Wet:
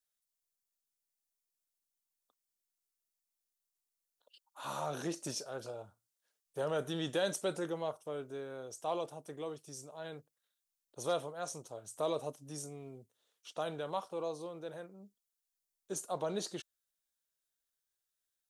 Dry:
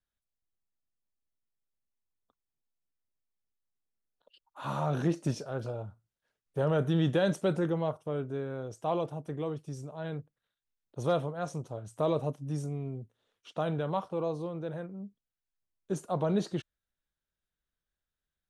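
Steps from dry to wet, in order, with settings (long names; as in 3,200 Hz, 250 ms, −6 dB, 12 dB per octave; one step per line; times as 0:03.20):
bass and treble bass −13 dB, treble +13 dB
level −4.5 dB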